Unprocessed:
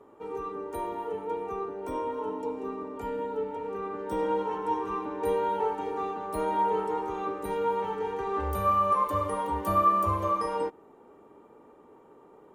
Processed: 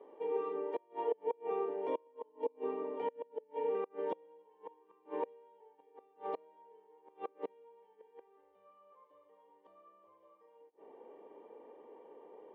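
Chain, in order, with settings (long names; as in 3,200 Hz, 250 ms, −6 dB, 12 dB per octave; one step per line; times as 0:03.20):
gate with flip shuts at −24 dBFS, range −33 dB
loudspeaker in its box 340–3,300 Hz, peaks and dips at 490 Hz +7 dB, 1,400 Hz −9 dB, 2,900 Hz +3 dB
notch comb filter 1,300 Hz
level −1.5 dB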